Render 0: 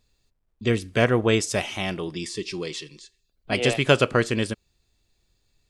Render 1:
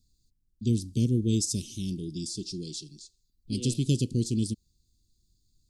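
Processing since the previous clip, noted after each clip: inverse Chebyshev band-stop 790–1700 Hz, stop band 70 dB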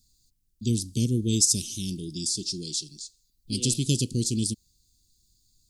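treble shelf 3 kHz +11.5 dB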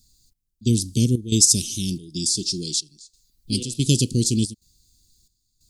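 trance gate "xx..xxx.xxxx.xx" 91 bpm -12 dB; trim +6 dB

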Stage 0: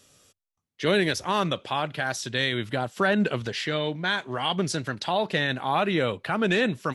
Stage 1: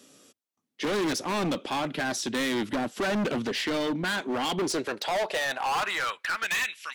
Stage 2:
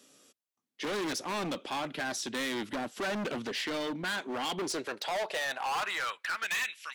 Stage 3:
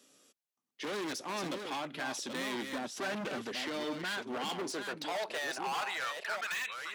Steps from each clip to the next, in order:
high-pass sweep 260 Hz -> 2.4 kHz, 4.40–6.73 s; bass shelf 260 Hz +4.5 dB; overload inside the chain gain 26.5 dB; trim +1.5 dB
bass shelf 380 Hz -5.5 dB; trim -4 dB
chunks repeated in reverse 641 ms, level -6 dB; de-esser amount 65%; high-pass 110 Hz 6 dB/octave; trim -3.5 dB

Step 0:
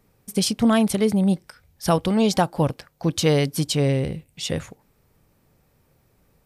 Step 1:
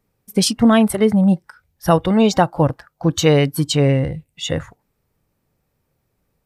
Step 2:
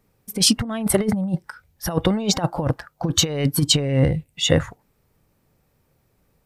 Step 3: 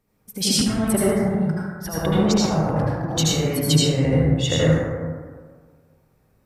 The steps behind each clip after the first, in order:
spectral noise reduction 13 dB; trim +5.5 dB
compressor with a negative ratio -18 dBFS, ratio -0.5
reverberation RT60 1.7 s, pre-delay 67 ms, DRR -8 dB; trim -7 dB

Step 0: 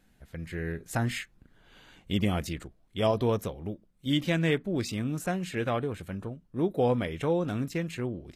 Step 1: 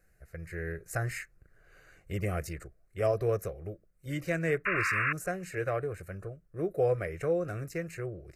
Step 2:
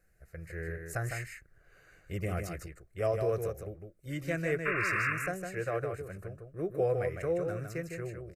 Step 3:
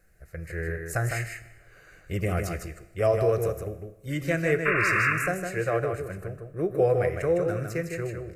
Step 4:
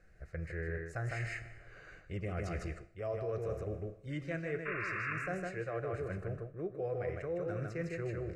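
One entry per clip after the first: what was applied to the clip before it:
painted sound noise, 4.65–5.13 s, 1–2.8 kHz -27 dBFS; static phaser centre 910 Hz, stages 6
delay 156 ms -5.5 dB; trim -2.5 dB
Schroeder reverb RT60 1.1 s, combs from 26 ms, DRR 13.5 dB; trim +7 dB
reverse; compression 6:1, threshold -35 dBFS, peak gain reduction 16.5 dB; reverse; distance through air 110 m

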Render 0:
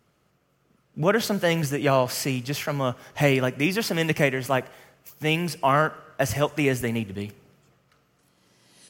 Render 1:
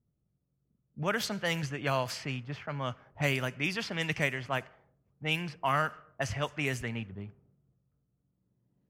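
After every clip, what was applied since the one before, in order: level-controlled noise filter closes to 300 Hz, open at -17.5 dBFS; peaking EQ 370 Hz -9.5 dB 2.4 oct; trim -4 dB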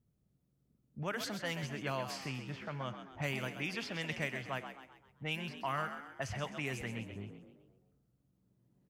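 compression 1.5:1, threshold -52 dBFS, peak gain reduction 10.5 dB; frequency-shifting echo 130 ms, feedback 45%, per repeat +67 Hz, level -9 dB; trim +1.5 dB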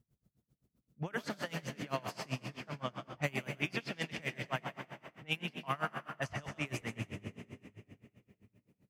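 on a send at -7 dB: reverberation RT60 3.0 s, pre-delay 86 ms; on the sum: logarithmic tremolo 7.7 Hz, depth 26 dB; trim +5.5 dB

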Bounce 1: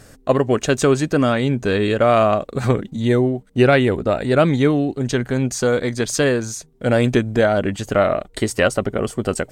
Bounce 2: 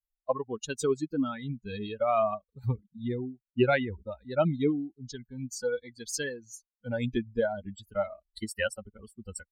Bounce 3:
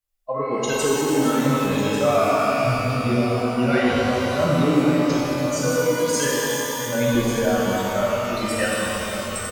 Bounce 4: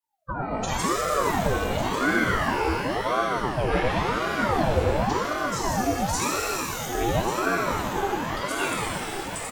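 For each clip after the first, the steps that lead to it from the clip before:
expander on every frequency bin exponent 3; trim -5.5 dB
peak limiter -23 dBFS, peak gain reduction 10.5 dB; delay 1146 ms -11 dB; pitch-shifted reverb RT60 3.3 s, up +12 st, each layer -8 dB, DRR -7 dB; trim +5.5 dB
ring modulator with a swept carrier 560 Hz, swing 65%, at 0.93 Hz; trim -1.5 dB

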